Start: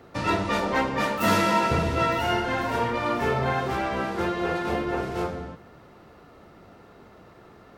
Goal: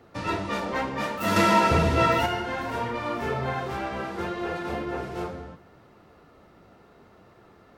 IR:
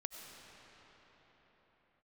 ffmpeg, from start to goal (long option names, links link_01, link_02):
-filter_complex "[0:a]asettb=1/sr,asplit=3[link_01][link_02][link_03];[link_01]atrim=end=1.364[link_04];[link_02]atrim=start=1.36:end=2.26,asetpts=PTS-STARTPTS,afade=type=in:duration=0.004:curve=qsin,afade=type=out:start_time=0.896:duration=0.004:curve=qsin,acontrast=77[link_05];[link_03]atrim=start=2.256[link_06];[link_04][link_05]acrossfade=duration=0.004:curve1=hsin:curve2=qsin[link_07];[link_07][link_06]acrossfade=duration=0.004:curve1=qsin:curve2=hsin,flanger=delay=8.2:depth=9.4:regen=-53:speed=0.68:shape=triangular"